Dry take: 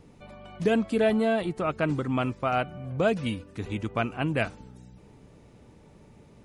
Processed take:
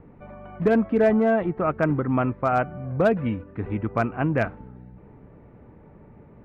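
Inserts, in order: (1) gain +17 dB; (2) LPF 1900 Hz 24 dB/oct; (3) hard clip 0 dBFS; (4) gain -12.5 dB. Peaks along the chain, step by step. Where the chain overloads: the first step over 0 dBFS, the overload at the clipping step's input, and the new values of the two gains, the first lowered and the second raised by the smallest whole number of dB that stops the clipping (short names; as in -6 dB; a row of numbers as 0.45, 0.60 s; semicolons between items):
+5.0, +4.0, 0.0, -12.5 dBFS; step 1, 4.0 dB; step 1 +13 dB, step 4 -8.5 dB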